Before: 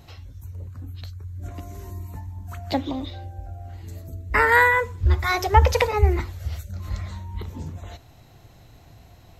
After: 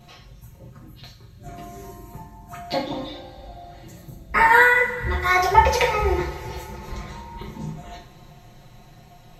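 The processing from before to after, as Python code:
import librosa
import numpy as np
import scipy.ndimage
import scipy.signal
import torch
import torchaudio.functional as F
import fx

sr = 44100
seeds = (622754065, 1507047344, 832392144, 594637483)

y = fx.high_shelf(x, sr, hz=9000.0, db=-3.5)
y = y + 0.78 * np.pad(y, (int(5.6 * sr / 1000.0), 0))[:len(y)]
y = fx.rev_double_slope(y, sr, seeds[0], early_s=0.37, late_s=3.8, knee_db=-21, drr_db=-3.0)
y = y * 10.0 ** (-3.5 / 20.0)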